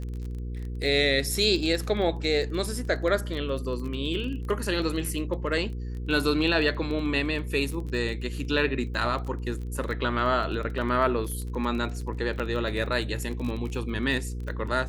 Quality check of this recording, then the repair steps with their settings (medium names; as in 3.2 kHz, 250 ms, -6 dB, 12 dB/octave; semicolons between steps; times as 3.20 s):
crackle 22 per s -33 dBFS
hum 60 Hz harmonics 8 -33 dBFS
12.39–12.40 s: dropout 6.8 ms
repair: de-click; de-hum 60 Hz, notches 8; interpolate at 12.39 s, 6.8 ms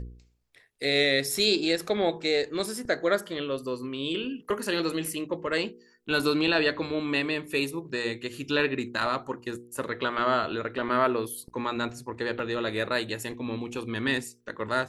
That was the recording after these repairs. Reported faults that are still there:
nothing left